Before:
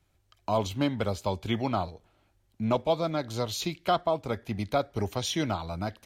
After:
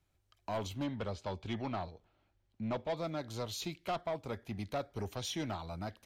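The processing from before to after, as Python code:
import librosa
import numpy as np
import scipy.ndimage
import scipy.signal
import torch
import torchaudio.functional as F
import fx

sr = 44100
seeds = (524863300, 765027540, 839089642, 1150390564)

y = fx.lowpass(x, sr, hz=5300.0, slope=12, at=(0.84, 2.97))
y = 10.0 ** (-22.5 / 20.0) * np.tanh(y / 10.0 ** (-22.5 / 20.0))
y = y * librosa.db_to_amplitude(-7.0)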